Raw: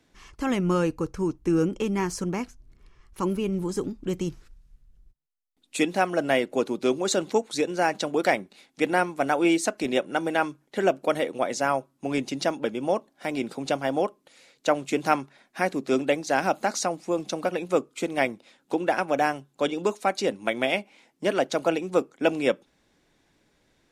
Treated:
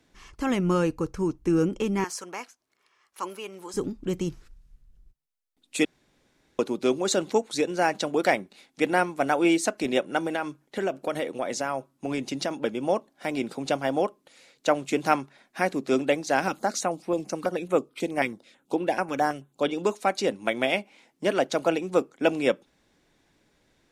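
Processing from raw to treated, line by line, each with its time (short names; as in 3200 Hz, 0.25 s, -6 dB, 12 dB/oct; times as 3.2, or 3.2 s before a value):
2.04–3.74 HPF 680 Hz
5.85–6.59 room tone
10.26–12.51 compressor 3:1, threshold -24 dBFS
16.48–19.71 stepped notch 9.2 Hz 660–6900 Hz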